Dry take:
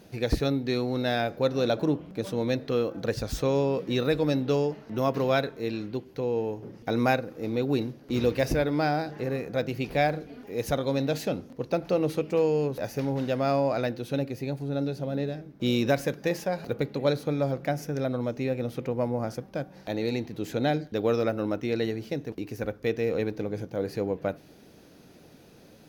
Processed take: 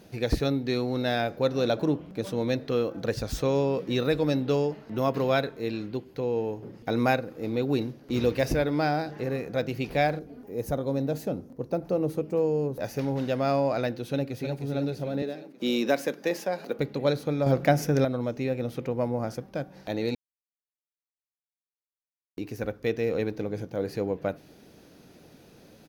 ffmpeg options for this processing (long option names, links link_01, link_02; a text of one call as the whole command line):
ffmpeg -i in.wav -filter_complex "[0:a]asettb=1/sr,asplit=3[link_01][link_02][link_03];[link_01]atrim=end=4.374[link_04];[link_02]atrim=start=4.37:end=7.66,asetpts=PTS-STARTPTS,afade=type=in:duration=0.004:curve=qsin,afade=type=out:start_time=3.286:duration=0.004:curve=qsin,bandreject=frequency=5800:width=12[link_05];[link_03]atrim=start=7.656[link_06];[link_04][link_05]acrossfade=duration=0.004:curve1=hsin:curve2=qsin[link_07];[link_07][link_06]acrossfade=duration=0.004:curve1=qsin:curve2=hsin,asettb=1/sr,asplit=3[link_08][link_09][link_10];[link_08]atrim=end=10.194[link_11];[link_09]atrim=start=10.19:end=12.8,asetpts=PTS-STARTPTS,afade=type=in:duration=0.004:curve=qsin,afade=type=out:start_time=2.606:duration=0.004:curve=qsin,equalizer=frequency=3100:width_type=o:width=2.5:gain=-12.5[link_12];[link_10]atrim=start=12.796[link_13];[link_11][link_12]acrossfade=duration=0.004:curve1=hsin:curve2=qsin[link_14];[link_14][link_13]acrossfade=duration=0.004:curve1=qsin:curve2=hsin,asplit=2[link_15][link_16];[link_16]afade=type=in:start_time=14:duration=0.01,afade=type=out:start_time=14.59:duration=0.01,aecho=0:1:310|620|930|1240|1550|1860|2170|2480:0.446684|0.26801|0.160806|0.0964837|0.0578902|0.0347341|0.0208405|0.0125043[link_17];[link_15][link_17]amix=inputs=2:normalize=0,asettb=1/sr,asplit=3[link_18][link_19][link_20];[link_18]atrim=end=15.224[link_21];[link_19]atrim=start=15.22:end=16.79,asetpts=PTS-STARTPTS,afade=type=in:duration=0.004:curve=qsin,afade=type=out:start_time=1.566:duration=0.004:curve=qsin,highpass=frequency=210:width=0.5412,highpass=frequency=210:width=1.3066[link_22];[link_20]atrim=start=16.786[link_23];[link_21][link_22]acrossfade=duration=0.004:curve1=hsin:curve2=qsin[link_24];[link_24][link_23]acrossfade=duration=0.004:curve1=qsin:curve2=hsin,asettb=1/sr,asplit=3[link_25][link_26][link_27];[link_25]atrim=end=17.464[link_28];[link_26]atrim=start=17.46:end=18.05,asetpts=PTS-STARTPTS,afade=type=in:duration=0.004:curve=qsin,afade=type=out:start_time=0.586:duration=0.004:curve=qsin,acontrast=84[link_29];[link_27]atrim=start=18.046[link_30];[link_28][link_29]acrossfade=duration=0.004:curve1=hsin:curve2=qsin[link_31];[link_31][link_30]acrossfade=duration=0.004:curve1=qsin:curve2=hsin,asplit=3[link_32][link_33][link_34];[link_32]atrim=end=20.15,asetpts=PTS-STARTPTS,afade=type=out:start_time=20.146:duration=0.004:curve=hsin[link_35];[link_33]atrim=start=20.15:end=22.37,asetpts=PTS-STARTPTS,volume=0[link_36];[link_34]atrim=start=22.37,asetpts=PTS-STARTPTS,afade=type=in:duration=0.004:curve=hsin[link_37];[link_35][link_36][link_37]concat=n=3:v=0:a=1" out.wav